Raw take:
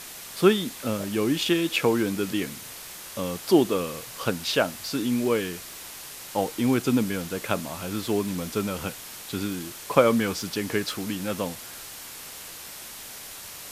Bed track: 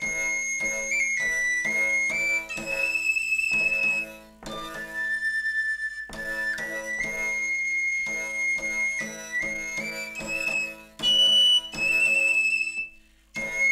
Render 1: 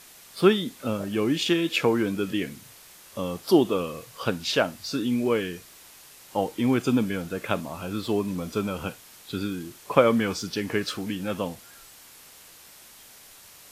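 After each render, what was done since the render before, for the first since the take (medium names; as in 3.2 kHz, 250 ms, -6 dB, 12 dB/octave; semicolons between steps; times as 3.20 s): noise print and reduce 9 dB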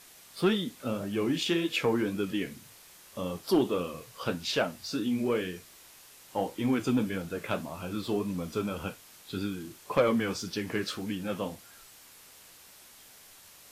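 flange 1.8 Hz, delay 9.2 ms, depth 8.2 ms, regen -48%; saturation -15.5 dBFS, distortion -18 dB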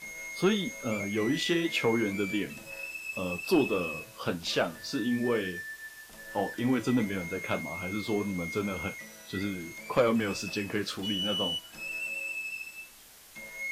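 add bed track -14 dB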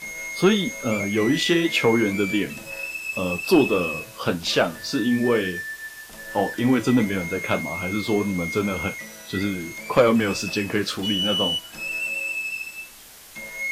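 trim +8 dB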